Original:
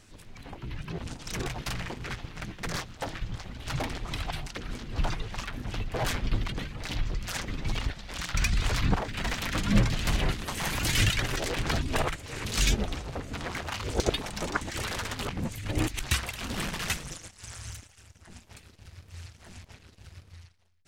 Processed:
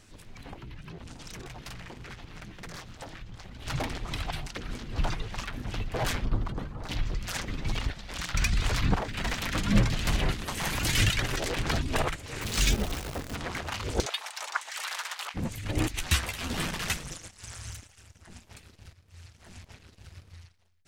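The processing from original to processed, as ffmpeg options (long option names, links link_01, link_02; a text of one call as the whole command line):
ffmpeg -i in.wav -filter_complex "[0:a]asettb=1/sr,asplit=3[link_01][link_02][link_03];[link_01]atrim=end=0.534[link_04];[link_02]atrim=start=0.53:end=3.62,asetpts=PTS-STARTPTS,afade=type=in:duration=0.004:curve=qsin,afade=type=out:start_time=3.086:duration=0.004:curve=qsin,acompressor=threshold=-39dB:ratio=6:attack=3.2:release=140:knee=1:detection=peak[link_05];[link_03]atrim=start=3.616[link_06];[link_04][link_05]acrossfade=duration=0.004:curve1=hsin:curve2=qsin[link_07];[link_07][link_06]acrossfade=duration=0.004:curve1=qsin:curve2=hsin,asplit=3[link_08][link_09][link_10];[link_08]afade=type=out:start_time=6.24:duration=0.02[link_11];[link_09]highshelf=frequency=1600:width_type=q:width=1.5:gain=-10,afade=type=in:start_time=6.24:duration=0.02,afade=type=out:start_time=6.88:duration=0.02[link_12];[link_10]afade=type=in:start_time=6.88:duration=0.02[link_13];[link_11][link_12][link_13]amix=inputs=3:normalize=0,asettb=1/sr,asplit=3[link_14][link_15][link_16];[link_14]atrim=end=12.414[link_17];[link_15]atrim=start=12.41:end=13.36,asetpts=PTS-STARTPTS,afade=type=in:duration=0.004:curve=qsin,afade=type=out:start_time=0.946:duration=0.004:curve=qsin,acrusher=bits=7:dc=4:mix=0:aa=0.000001[link_18];[link_16]atrim=start=13.356[link_19];[link_17][link_18]acrossfade=duration=0.004:curve1=hsin:curve2=qsin[link_20];[link_20][link_19]acrossfade=duration=0.004:curve1=qsin:curve2=hsin,asplit=3[link_21][link_22][link_23];[link_21]afade=type=out:start_time=14.05:duration=0.02[link_24];[link_22]highpass=frequency=790:width=0.5412,highpass=frequency=790:width=1.3066,afade=type=in:start_time=14.05:duration=0.02,afade=type=out:start_time=15.34:duration=0.02[link_25];[link_23]afade=type=in:start_time=15.34:duration=0.02[link_26];[link_24][link_25][link_26]amix=inputs=3:normalize=0,asettb=1/sr,asplit=3[link_27][link_28][link_29];[link_27]atrim=end=15.964[link_30];[link_28]atrim=start=15.96:end=16.71,asetpts=PTS-STARTPTS,afade=type=in:duration=0.004:curve=qsin,afade=type=out:start_time=0.746:duration=0.004:curve=qsin,asplit=2[link_31][link_32];[link_32]adelay=12,volume=-4dB[link_33];[link_31][link_33]amix=inputs=2:normalize=0,atrim=end_sample=33075[link_34];[link_29]atrim=start=16.706[link_35];[link_30][link_34]acrossfade=duration=0.004:curve1=hsin:curve2=qsin[link_36];[link_36][link_35]acrossfade=duration=0.004:curve1=qsin:curve2=hsin,asplit=2[link_37][link_38];[link_37]atrim=end=18.93,asetpts=PTS-STARTPTS,afade=type=out:start_time=18.926:duration=0.004:curve=hsin:silence=0.211349[link_39];[link_38]atrim=start=18.93,asetpts=PTS-STARTPTS,afade=type=in:duration=0.72:silence=0.211349[link_40];[link_39][link_40]concat=n=2:v=0:a=1" out.wav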